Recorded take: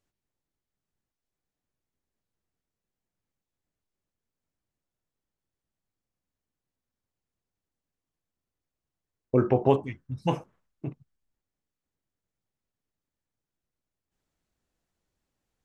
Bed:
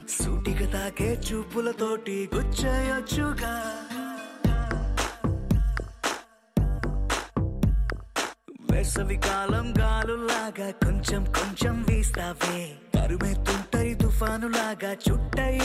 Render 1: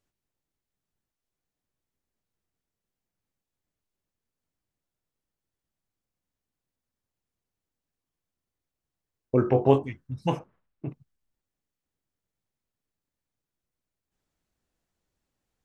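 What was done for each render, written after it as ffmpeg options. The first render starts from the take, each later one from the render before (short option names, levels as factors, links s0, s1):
-filter_complex "[0:a]asettb=1/sr,asplit=3[s0][s1][s2];[s0]atrim=end=9.454[s3];[s1]atrim=start=9.45:end=9.88,asetpts=PTS-STARTPTS,afade=t=in:d=0.004:c=qsin,afade=t=out:st=0.426:d=0.004:c=qsin,asplit=2[s4][s5];[s5]adelay=22,volume=0.501[s6];[s4][s6]amix=inputs=2:normalize=0,atrim=end_sample=18963[s7];[s2]atrim=start=9.876[s8];[s3][s7]acrossfade=d=0.004:c1=hsin:c2=qsin[s9];[s9][s8]acrossfade=d=0.004:c1=qsin:c2=hsin,asettb=1/sr,asplit=3[s10][s11][s12];[s10]atrim=end=10.394[s13];[s11]atrim=start=10.39:end=10.89,asetpts=PTS-STARTPTS,afade=t=in:d=0.004:c=qsin,afade=t=out:st=0.496:d=0.004:c=qsin,lowpass=3100[s14];[s12]atrim=start=10.886[s15];[s13][s14]acrossfade=d=0.004:c1=hsin:c2=qsin[s16];[s16][s15]acrossfade=d=0.004:c1=qsin:c2=hsin"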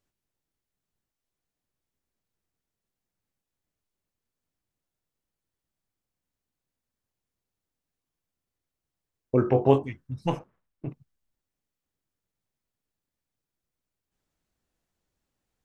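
-filter_complex "[0:a]asettb=1/sr,asplit=3[s0][s1][s2];[s0]atrim=end=10.254[s3];[s1]atrim=start=10.25:end=10.87,asetpts=PTS-STARTPTS,afade=t=in:d=0.004:c=qsin,afade=t=out:st=0.616:d=0.004:c=qsin,aeval=exprs='if(lt(val(0),0),0.708*val(0),val(0))':c=same[s4];[s2]atrim=start=10.866[s5];[s3][s4]acrossfade=d=0.004:c1=hsin:c2=qsin[s6];[s6][s5]acrossfade=d=0.004:c1=qsin:c2=hsin"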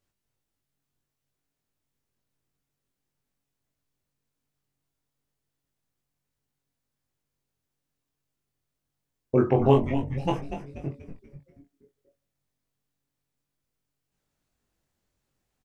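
-filter_complex "[0:a]asplit=2[s0][s1];[s1]adelay=21,volume=0.708[s2];[s0][s2]amix=inputs=2:normalize=0,asplit=2[s3][s4];[s4]asplit=5[s5][s6][s7][s8][s9];[s5]adelay=241,afreqshift=-140,volume=0.398[s10];[s6]adelay=482,afreqshift=-280,volume=0.184[s11];[s7]adelay=723,afreqshift=-420,volume=0.0841[s12];[s8]adelay=964,afreqshift=-560,volume=0.0389[s13];[s9]adelay=1205,afreqshift=-700,volume=0.0178[s14];[s10][s11][s12][s13][s14]amix=inputs=5:normalize=0[s15];[s3][s15]amix=inputs=2:normalize=0"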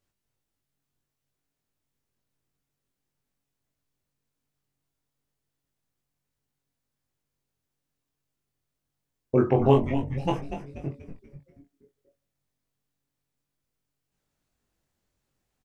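-af anull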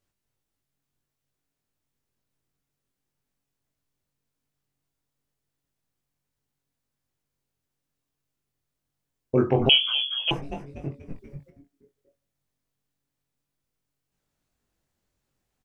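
-filter_complex "[0:a]asettb=1/sr,asplit=3[s0][s1][s2];[s0]atrim=end=9.694[s3];[s1]atrim=start=9.69:end=10.31,asetpts=PTS-STARTPTS,afade=t=in:d=0.004:c=qsin,afade=t=out:st=0.616:d=0.004:c=qsin,lowpass=f=2900:t=q:w=0.5098,lowpass=f=2900:t=q:w=0.6013,lowpass=f=2900:t=q:w=0.9,lowpass=f=2900:t=q:w=2.563,afreqshift=-3400[s4];[s2]atrim=start=10.306[s5];[s3][s4]acrossfade=d=0.004:c1=hsin:c2=qsin[s6];[s6][s5]acrossfade=d=0.004:c1=qsin:c2=hsin,asplit=3[s7][s8][s9];[s7]afade=t=out:st=11.09:d=0.02[s10];[s8]acontrast=52,afade=t=in:st=11.09:d=0.02,afade=t=out:st=11.49:d=0.02[s11];[s9]afade=t=in:st=11.49:d=0.02[s12];[s10][s11][s12]amix=inputs=3:normalize=0"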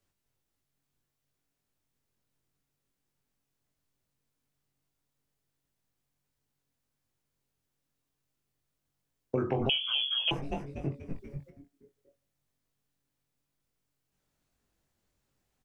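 -filter_complex "[0:a]acrossover=split=110|610|2400[s0][s1][s2][s3];[s1]alimiter=limit=0.126:level=0:latency=1[s4];[s0][s4][s2][s3]amix=inputs=4:normalize=0,acompressor=threshold=0.0501:ratio=6"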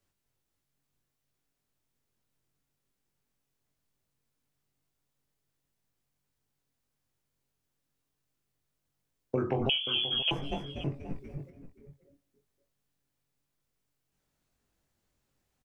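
-filter_complex "[0:a]asplit=2[s0][s1];[s1]adelay=530.6,volume=0.224,highshelf=f=4000:g=-11.9[s2];[s0][s2]amix=inputs=2:normalize=0"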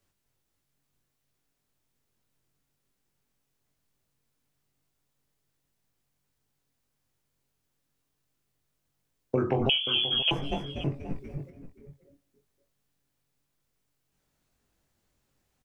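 -af "volume=1.5"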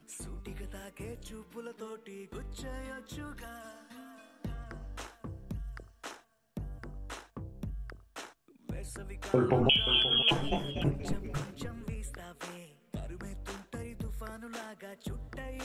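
-filter_complex "[1:a]volume=0.15[s0];[0:a][s0]amix=inputs=2:normalize=0"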